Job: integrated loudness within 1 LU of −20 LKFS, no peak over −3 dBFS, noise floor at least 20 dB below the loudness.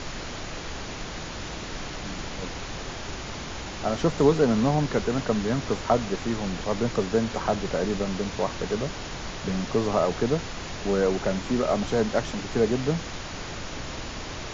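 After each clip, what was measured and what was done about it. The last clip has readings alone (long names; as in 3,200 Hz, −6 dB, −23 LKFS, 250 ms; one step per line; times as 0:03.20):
background noise floor −36 dBFS; target noise floor −48 dBFS; integrated loudness −27.5 LKFS; sample peak −7.5 dBFS; target loudness −20.0 LKFS
→ noise reduction from a noise print 12 dB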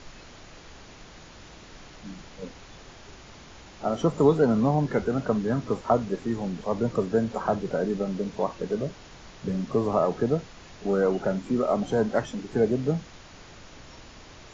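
background noise floor −48 dBFS; integrated loudness −26.5 LKFS; sample peak −8.0 dBFS; target loudness −20.0 LKFS
→ level +6.5 dB
brickwall limiter −3 dBFS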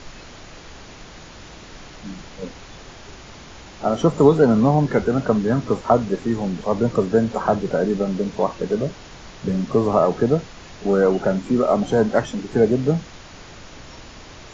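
integrated loudness −20.0 LKFS; sample peak −3.0 dBFS; background noise floor −41 dBFS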